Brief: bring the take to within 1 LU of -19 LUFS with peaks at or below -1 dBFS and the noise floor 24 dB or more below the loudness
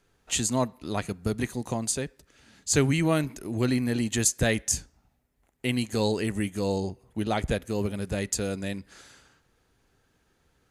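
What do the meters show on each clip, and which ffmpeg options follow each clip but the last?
loudness -28.0 LUFS; peak -9.0 dBFS; loudness target -19.0 LUFS
-> -af "volume=9dB,alimiter=limit=-1dB:level=0:latency=1"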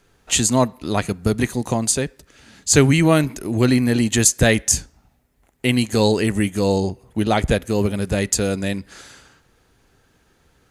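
loudness -19.0 LUFS; peak -1.0 dBFS; noise floor -61 dBFS

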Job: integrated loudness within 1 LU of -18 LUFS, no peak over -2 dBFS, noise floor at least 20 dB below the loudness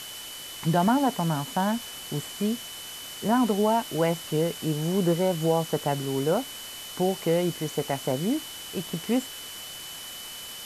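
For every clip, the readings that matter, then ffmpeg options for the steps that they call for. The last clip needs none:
steady tone 3000 Hz; tone level -41 dBFS; noise floor -40 dBFS; noise floor target -48 dBFS; loudness -27.5 LUFS; peak -11.0 dBFS; loudness target -18.0 LUFS
-> -af "bandreject=f=3k:w=30"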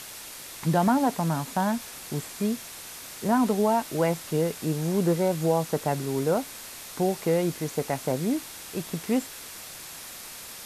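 steady tone none; noise floor -42 dBFS; noise floor target -47 dBFS
-> -af "afftdn=nr=6:nf=-42"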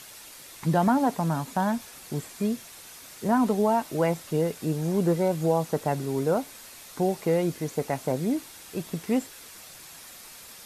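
noise floor -46 dBFS; noise floor target -47 dBFS
-> -af "afftdn=nr=6:nf=-46"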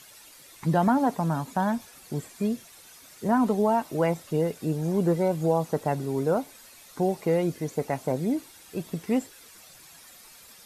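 noise floor -51 dBFS; loudness -27.0 LUFS; peak -11.5 dBFS; loudness target -18.0 LUFS
-> -af "volume=9dB"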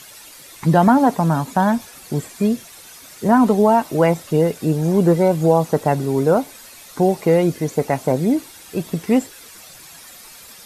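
loudness -18.0 LUFS; peak -2.5 dBFS; noise floor -42 dBFS

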